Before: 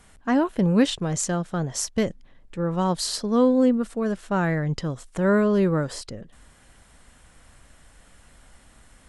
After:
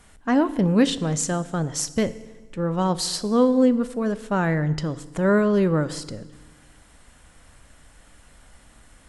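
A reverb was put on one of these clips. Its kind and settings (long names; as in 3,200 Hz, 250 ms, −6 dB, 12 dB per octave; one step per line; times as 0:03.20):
feedback delay network reverb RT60 1.3 s, low-frequency decay 1.2×, high-frequency decay 0.9×, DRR 14 dB
level +1 dB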